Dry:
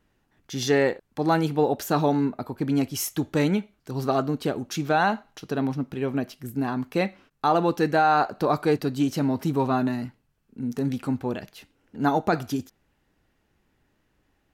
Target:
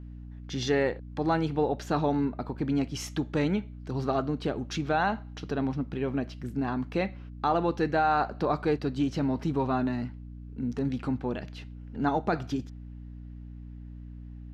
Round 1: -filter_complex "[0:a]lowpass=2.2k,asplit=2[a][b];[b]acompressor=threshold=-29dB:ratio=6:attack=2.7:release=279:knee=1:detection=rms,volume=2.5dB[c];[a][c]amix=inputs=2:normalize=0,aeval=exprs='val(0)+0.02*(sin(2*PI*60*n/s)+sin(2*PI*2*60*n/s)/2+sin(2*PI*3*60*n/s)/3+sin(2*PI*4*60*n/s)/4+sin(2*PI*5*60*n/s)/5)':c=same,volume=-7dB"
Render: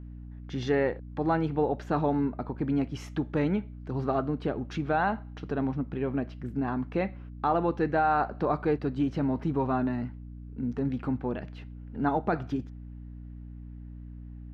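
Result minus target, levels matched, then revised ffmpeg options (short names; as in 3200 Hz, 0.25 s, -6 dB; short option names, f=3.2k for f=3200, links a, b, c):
4000 Hz band -7.5 dB
-filter_complex "[0:a]lowpass=4.6k,asplit=2[a][b];[b]acompressor=threshold=-29dB:ratio=6:attack=2.7:release=279:knee=1:detection=rms,volume=2.5dB[c];[a][c]amix=inputs=2:normalize=0,aeval=exprs='val(0)+0.02*(sin(2*PI*60*n/s)+sin(2*PI*2*60*n/s)/2+sin(2*PI*3*60*n/s)/3+sin(2*PI*4*60*n/s)/4+sin(2*PI*5*60*n/s)/5)':c=same,volume=-7dB"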